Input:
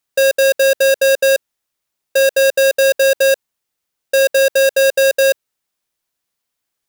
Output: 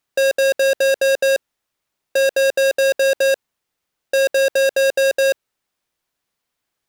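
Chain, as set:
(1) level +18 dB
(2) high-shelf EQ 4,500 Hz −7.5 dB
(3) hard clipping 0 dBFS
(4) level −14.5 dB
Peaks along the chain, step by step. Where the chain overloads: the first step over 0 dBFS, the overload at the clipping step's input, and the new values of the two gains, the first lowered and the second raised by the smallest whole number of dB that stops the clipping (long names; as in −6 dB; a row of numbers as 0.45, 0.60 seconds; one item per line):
+7.0, +7.0, 0.0, −14.5 dBFS
step 1, 7.0 dB
step 1 +11 dB, step 4 −7.5 dB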